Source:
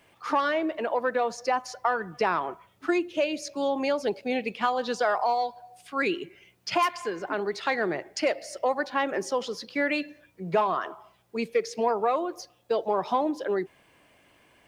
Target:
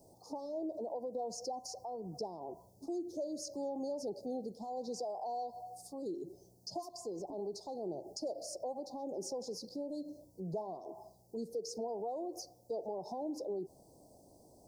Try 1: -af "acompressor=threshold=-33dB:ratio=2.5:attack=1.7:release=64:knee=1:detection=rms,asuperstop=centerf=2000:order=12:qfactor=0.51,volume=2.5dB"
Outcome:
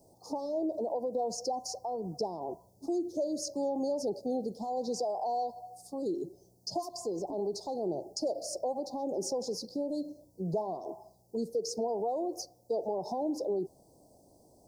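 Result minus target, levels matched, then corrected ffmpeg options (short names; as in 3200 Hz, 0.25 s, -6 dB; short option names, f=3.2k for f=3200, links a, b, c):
compressor: peak gain reduction -7 dB
-af "acompressor=threshold=-44.5dB:ratio=2.5:attack=1.7:release=64:knee=1:detection=rms,asuperstop=centerf=2000:order=12:qfactor=0.51,volume=2.5dB"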